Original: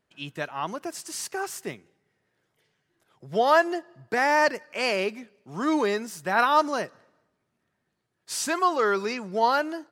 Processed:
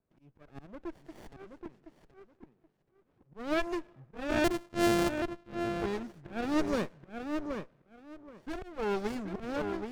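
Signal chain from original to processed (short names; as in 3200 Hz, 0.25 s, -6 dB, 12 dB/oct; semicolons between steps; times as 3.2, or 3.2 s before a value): 4.44–5.82 sample sorter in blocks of 128 samples; auto swell 0.446 s; low-pass opened by the level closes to 1000 Hz, open at -24.5 dBFS; darkening echo 0.776 s, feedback 22%, low-pass 1300 Hz, level -4 dB; running maximum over 33 samples; gain -3 dB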